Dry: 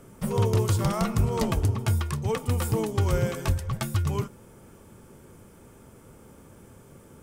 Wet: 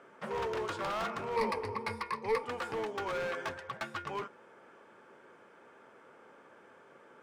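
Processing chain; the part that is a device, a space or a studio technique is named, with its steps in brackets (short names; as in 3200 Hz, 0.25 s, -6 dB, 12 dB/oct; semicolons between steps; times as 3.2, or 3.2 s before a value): megaphone (BPF 530–2700 Hz; bell 1600 Hz +5.5 dB 0.44 oct; hard clip -31.5 dBFS, distortion -9 dB); 1.36–2.44 ripple EQ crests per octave 0.9, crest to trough 14 dB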